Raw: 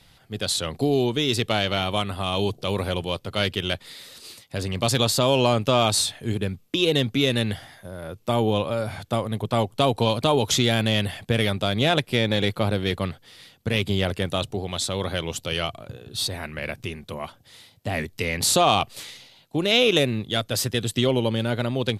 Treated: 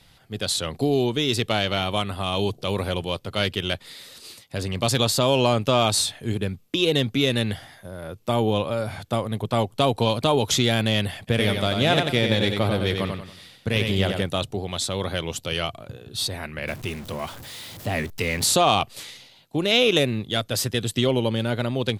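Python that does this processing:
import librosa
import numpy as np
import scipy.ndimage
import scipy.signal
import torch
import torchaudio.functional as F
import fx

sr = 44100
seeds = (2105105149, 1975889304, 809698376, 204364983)

y = fx.echo_feedback(x, sr, ms=93, feedback_pct=36, wet_db=-5.0, at=(11.27, 14.21), fade=0.02)
y = fx.zero_step(y, sr, step_db=-35.0, at=(16.67, 18.46))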